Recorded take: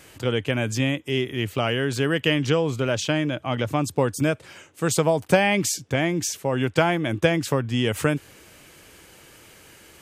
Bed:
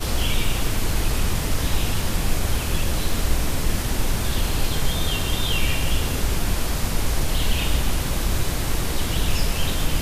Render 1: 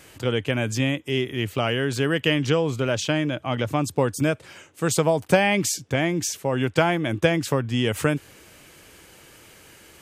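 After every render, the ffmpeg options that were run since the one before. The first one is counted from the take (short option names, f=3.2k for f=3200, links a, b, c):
-af anull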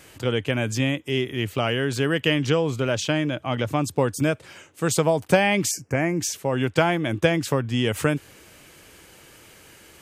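-filter_complex "[0:a]asettb=1/sr,asplit=3[a][b][c];[a]atrim=end=5.714[d];[b]atrim=start=5.71:end=6.2,asetpts=PTS-STARTPTS,afade=t=in:d=0.004:c=qsin,afade=t=out:st=0.486:d=0.004:c=qsin,asuperstop=centerf=3600:order=4:qfactor=1.4[e];[c]atrim=start=6.196[f];[d][e]acrossfade=d=0.004:c1=hsin:c2=qsin[g];[g][f]acrossfade=d=0.004:c1=qsin:c2=hsin"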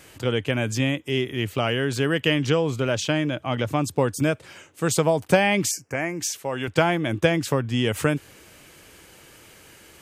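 -filter_complex "[0:a]asettb=1/sr,asplit=3[a][b][c];[a]atrim=end=5.724[d];[b]atrim=start=5.72:end=6.68,asetpts=PTS-STARTPTS,afade=t=in:d=0.004:c=qsin,afade=t=out:st=0.956:d=0.004:c=qsin,lowshelf=f=410:g=-9.5[e];[c]atrim=start=6.676[f];[d][e]acrossfade=d=0.004:c1=hsin:c2=qsin[g];[g][f]acrossfade=d=0.004:c1=qsin:c2=hsin"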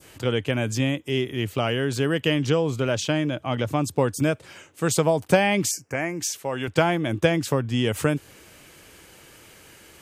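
-af "adynamicequalizer=threshold=0.0141:dfrequency=2000:dqfactor=0.88:tfrequency=2000:tqfactor=0.88:attack=5:release=100:ratio=0.375:range=2:mode=cutabove:tftype=bell"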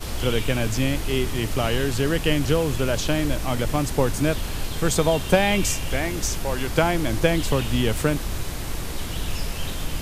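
-filter_complex "[1:a]volume=-6dB[a];[0:a][a]amix=inputs=2:normalize=0"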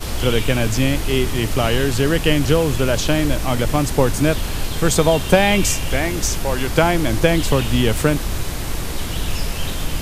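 -af "volume=5dB,alimiter=limit=-1dB:level=0:latency=1"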